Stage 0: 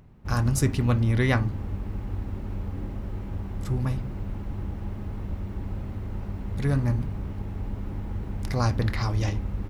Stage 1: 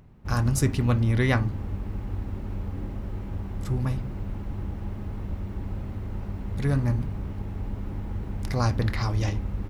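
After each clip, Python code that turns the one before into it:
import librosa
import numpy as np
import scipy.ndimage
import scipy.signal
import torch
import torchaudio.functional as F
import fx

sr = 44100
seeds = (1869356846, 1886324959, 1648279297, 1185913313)

y = x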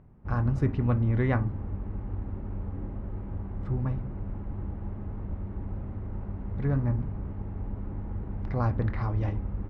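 y = scipy.signal.sosfilt(scipy.signal.butter(2, 1500.0, 'lowpass', fs=sr, output='sos'), x)
y = y * librosa.db_to_amplitude(-2.5)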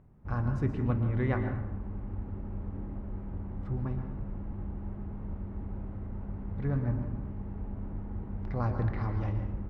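y = fx.rev_plate(x, sr, seeds[0], rt60_s=0.83, hf_ratio=0.65, predelay_ms=105, drr_db=6.5)
y = y * librosa.db_to_amplitude(-4.0)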